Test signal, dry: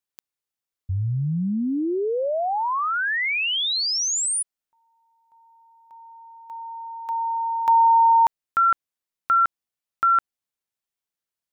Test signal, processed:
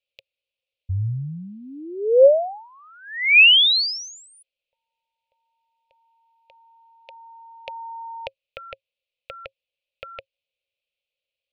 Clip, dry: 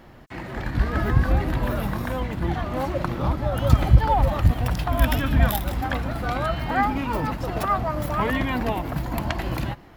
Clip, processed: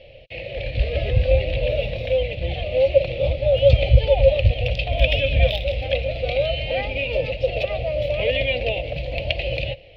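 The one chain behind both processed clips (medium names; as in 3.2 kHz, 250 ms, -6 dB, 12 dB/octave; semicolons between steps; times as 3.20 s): FFT filter 110 Hz 0 dB, 230 Hz -17 dB, 370 Hz -10 dB, 540 Hz +15 dB, 990 Hz -26 dB, 1.5 kHz -24 dB, 2.5 kHz +14 dB, 4.3 kHz +3 dB, 8.4 kHz -29 dB, 14 kHz -27 dB; trim +1 dB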